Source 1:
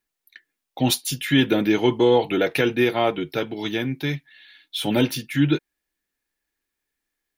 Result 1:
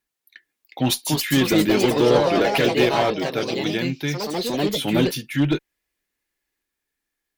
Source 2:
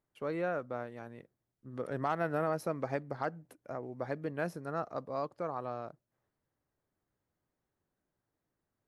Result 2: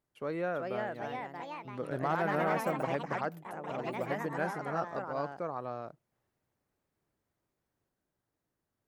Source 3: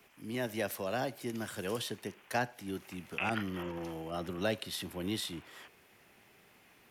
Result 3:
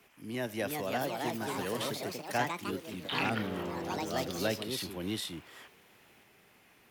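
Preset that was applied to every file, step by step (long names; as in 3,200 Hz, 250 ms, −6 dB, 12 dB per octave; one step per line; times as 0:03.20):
asymmetric clip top −15.5 dBFS
delay with pitch and tempo change per echo 419 ms, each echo +3 semitones, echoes 3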